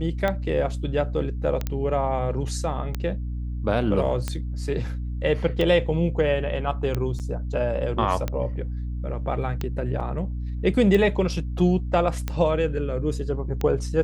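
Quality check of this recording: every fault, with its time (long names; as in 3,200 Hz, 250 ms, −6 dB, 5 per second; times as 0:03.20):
mains hum 60 Hz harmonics 5 −29 dBFS
scratch tick 45 rpm −13 dBFS
0:01.67: click −13 dBFS
0:07.19–0:07.20: drop-out 8.1 ms
0:10.00–0:10.01: drop-out 5.3 ms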